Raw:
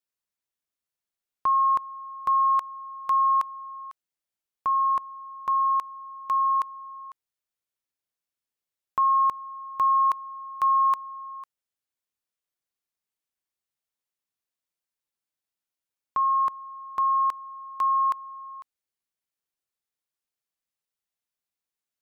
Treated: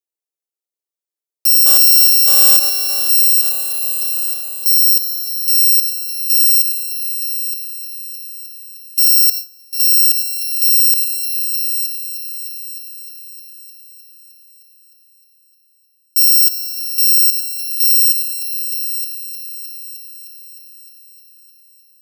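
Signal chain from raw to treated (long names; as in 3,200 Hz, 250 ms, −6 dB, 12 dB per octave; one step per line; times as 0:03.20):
samples in bit-reversed order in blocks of 128 samples
0:01.66–0:02.57: leveller curve on the samples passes 5
parametric band 1,500 Hz −10.5 dB 2.8 octaves
echo machine with several playback heads 307 ms, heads all three, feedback 62%, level −16 dB
0:09.26–0:09.73: noise gate with hold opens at −20 dBFS
Butterworth high-pass 330 Hz 48 dB per octave
low-shelf EQ 430 Hz +10 dB
on a send at −22 dB: convolution reverb RT60 0.55 s, pre-delay 100 ms
on the sum: boost into a limiter +20.5 dB
multiband upward and downward expander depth 40%
level −4 dB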